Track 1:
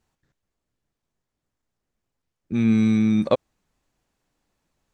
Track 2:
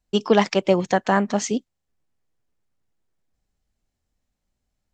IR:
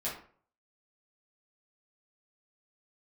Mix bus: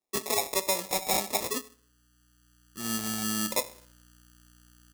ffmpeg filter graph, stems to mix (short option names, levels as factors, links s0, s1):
-filter_complex "[0:a]aeval=exprs='val(0)+0.00794*(sin(2*PI*60*n/s)+sin(2*PI*2*60*n/s)/2+sin(2*PI*3*60*n/s)/3+sin(2*PI*4*60*n/s)/4+sin(2*PI*5*60*n/s)/5)':c=same,adelay=250,volume=0.355,asplit=2[s0][s1];[s1]volume=0.211[s2];[1:a]highpass=280,asplit=2[s3][s4];[s4]adelay=6,afreqshift=0.87[s5];[s3][s5]amix=inputs=2:normalize=1,volume=0.668,asplit=3[s6][s7][s8];[s7]volume=0.178[s9];[s8]apad=whole_len=228831[s10];[s0][s10]sidechaincompress=threshold=0.00282:ratio=3:attack=16:release=1030[s11];[2:a]atrim=start_sample=2205[s12];[s2][s9]amix=inputs=2:normalize=0[s13];[s13][s12]afir=irnorm=-1:irlink=0[s14];[s11][s6][s14]amix=inputs=3:normalize=0,acrusher=samples=29:mix=1:aa=0.000001,bass=f=250:g=-10,treble=f=4000:g=13,alimiter=limit=0.473:level=0:latency=1:release=183"